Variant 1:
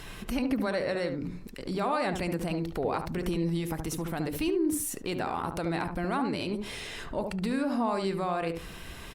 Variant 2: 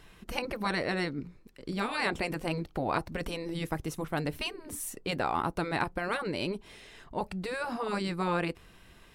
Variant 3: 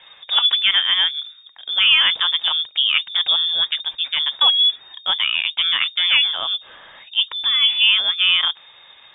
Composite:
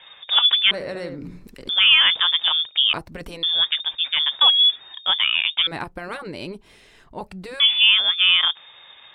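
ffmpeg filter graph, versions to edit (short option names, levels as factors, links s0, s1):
-filter_complex "[1:a]asplit=2[s0][s1];[2:a]asplit=4[s2][s3][s4][s5];[s2]atrim=end=0.712[s6];[0:a]atrim=start=0.708:end=1.692[s7];[s3]atrim=start=1.688:end=2.932[s8];[s0]atrim=start=2.928:end=3.432[s9];[s4]atrim=start=3.428:end=5.672[s10];[s1]atrim=start=5.668:end=7.602[s11];[s5]atrim=start=7.598[s12];[s6][s7]acrossfade=d=0.004:c1=hsin:c2=hsin[s13];[s13][s8]acrossfade=d=0.004:c1=hsin:c2=hsin[s14];[s14][s9]acrossfade=d=0.004:c1=hsin:c2=hsin[s15];[s15][s10]acrossfade=d=0.004:c1=hsin:c2=hsin[s16];[s16][s11]acrossfade=d=0.004:c1=hsin:c2=hsin[s17];[s17][s12]acrossfade=d=0.004:c1=hsin:c2=hsin"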